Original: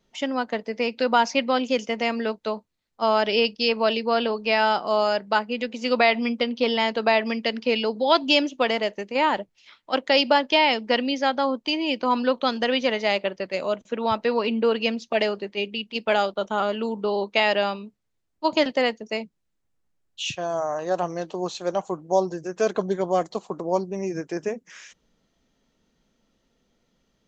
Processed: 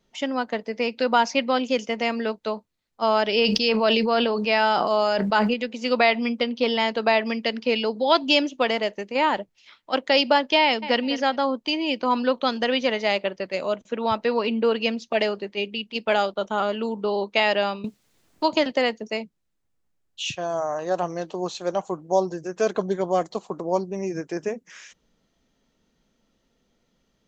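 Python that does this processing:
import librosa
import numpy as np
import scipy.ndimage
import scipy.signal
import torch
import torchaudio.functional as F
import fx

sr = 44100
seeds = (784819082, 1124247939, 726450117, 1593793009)

y = fx.sustainer(x, sr, db_per_s=23.0, at=(3.41, 5.54))
y = fx.echo_throw(y, sr, start_s=10.62, length_s=0.4, ms=200, feedback_pct=20, wet_db=-13.0)
y = fx.band_squash(y, sr, depth_pct=70, at=(17.84, 19.09))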